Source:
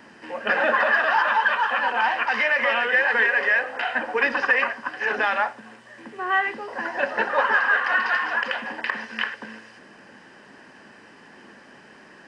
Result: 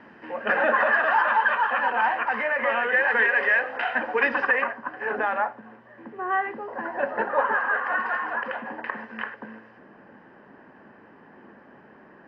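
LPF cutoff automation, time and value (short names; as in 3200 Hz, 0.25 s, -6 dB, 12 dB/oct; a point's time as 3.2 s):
1.93 s 2100 Hz
2.45 s 1400 Hz
3.37 s 2700 Hz
4.28 s 2700 Hz
4.79 s 1300 Hz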